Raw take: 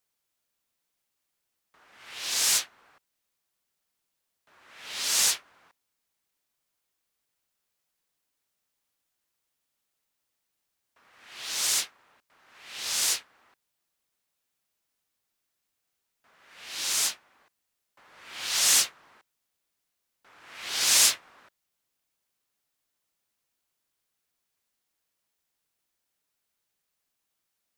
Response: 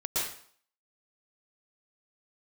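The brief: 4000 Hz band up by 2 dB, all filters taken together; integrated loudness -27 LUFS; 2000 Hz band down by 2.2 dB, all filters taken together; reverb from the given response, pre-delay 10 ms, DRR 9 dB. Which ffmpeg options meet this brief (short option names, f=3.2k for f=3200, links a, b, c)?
-filter_complex "[0:a]equalizer=f=2k:t=o:g=-4,equalizer=f=4k:t=o:g=3.5,asplit=2[a][b];[1:a]atrim=start_sample=2205,adelay=10[c];[b][c]afir=irnorm=-1:irlink=0,volume=-16dB[d];[a][d]amix=inputs=2:normalize=0,volume=-4dB"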